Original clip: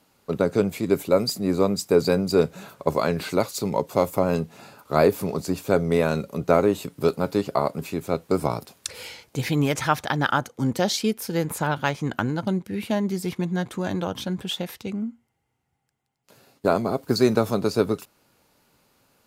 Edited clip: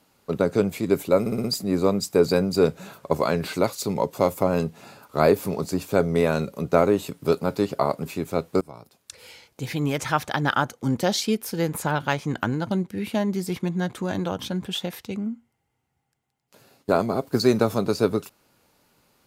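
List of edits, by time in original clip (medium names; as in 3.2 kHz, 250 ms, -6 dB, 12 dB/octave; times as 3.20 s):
1.20 s: stutter 0.06 s, 5 plays
8.37–10.19 s: fade in, from -22.5 dB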